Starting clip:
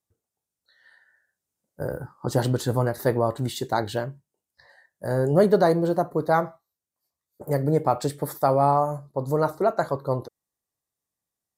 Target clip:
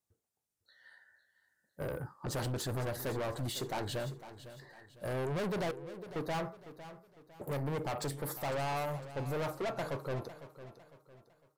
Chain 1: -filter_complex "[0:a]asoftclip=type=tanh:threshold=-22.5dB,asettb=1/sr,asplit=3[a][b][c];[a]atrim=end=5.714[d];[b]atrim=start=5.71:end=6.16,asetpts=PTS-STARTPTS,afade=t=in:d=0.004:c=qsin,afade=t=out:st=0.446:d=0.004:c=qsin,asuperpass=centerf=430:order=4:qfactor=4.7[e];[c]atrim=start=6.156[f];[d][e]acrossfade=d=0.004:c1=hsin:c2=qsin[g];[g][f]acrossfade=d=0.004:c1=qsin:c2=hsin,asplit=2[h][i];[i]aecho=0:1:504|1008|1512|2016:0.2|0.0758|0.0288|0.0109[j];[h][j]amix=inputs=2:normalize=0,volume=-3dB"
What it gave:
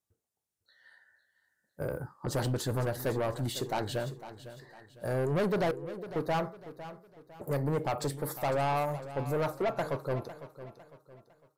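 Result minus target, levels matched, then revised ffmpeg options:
soft clip: distortion -4 dB
-filter_complex "[0:a]asoftclip=type=tanh:threshold=-30dB,asettb=1/sr,asplit=3[a][b][c];[a]atrim=end=5.714[d];[b]atrim=start=5.71:end=6.16,asetpts=PTS-STARTPTS,afade=t=in:d=0.004:c=qsin,afade=t=out:st=0.446:d=0.004:c=qsin,asuperpass=centerf=430:order=4:qfactor=4.7[e];[c]atrim=start=6.156[f];[d][e]acrossfade=d=0.004:c1=hsin:c2=qsin[g];[g][f]acrossfade=d=0.004:c1=qsin:c2=hsin,asplit=2[h][i];[i]aecho=0:1:504|1008|1512|2016:0.2|0.0758|0.0288|0.0109[j];[h][j]amix=inputs=2:normalize=0,volume=-3dB"

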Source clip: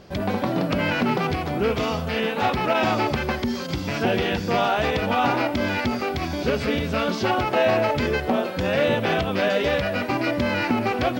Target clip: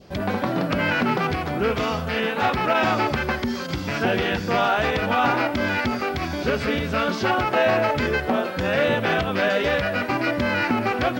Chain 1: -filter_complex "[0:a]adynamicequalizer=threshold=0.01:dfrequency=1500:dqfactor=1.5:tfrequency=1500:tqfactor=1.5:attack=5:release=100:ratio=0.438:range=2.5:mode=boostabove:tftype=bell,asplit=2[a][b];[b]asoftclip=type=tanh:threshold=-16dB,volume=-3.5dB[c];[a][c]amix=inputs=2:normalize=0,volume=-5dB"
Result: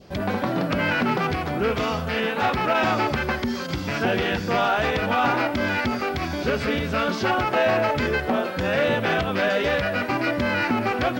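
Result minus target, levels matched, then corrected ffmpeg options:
soft clip: distortion +18 dB
-filter_complex "[0:a]adynamicequalizer=threshold=0.01:dfrequency=1500:dqfactor=1.5:tfrequency=1500:tqfactor=1.5:attack=5:release=100:ratio=0.438:range=2.5:mode=boostabove:tftype=bell,asplit=2[a][b];[b]asoftclip=type=tanh:threshold=-4.5dB,volume=-3.5dB[c];[a][c]amix=inputs=2:normalize=0,volume=-5dB"

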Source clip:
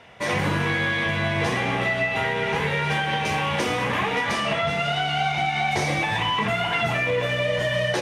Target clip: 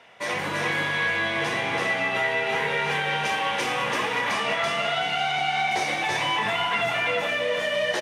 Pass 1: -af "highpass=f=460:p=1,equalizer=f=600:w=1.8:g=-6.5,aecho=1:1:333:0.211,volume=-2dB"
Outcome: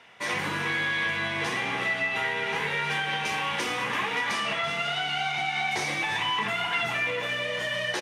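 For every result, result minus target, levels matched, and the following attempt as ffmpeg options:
echo-to-direct -11.5 dB; 500 Hz band -4.0 dB
-af "highpass=f=460:p=1,equalizer=f=600:w=1.8:g=-6.5,aecho=1:1:333:0.794,volume=-2dB"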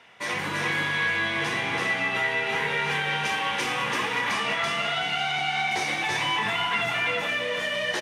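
500 Hz band -4.0 dB
-af "highpass=f=460:p=1,aecho=1:1:333:0.794,volume=-2dB"

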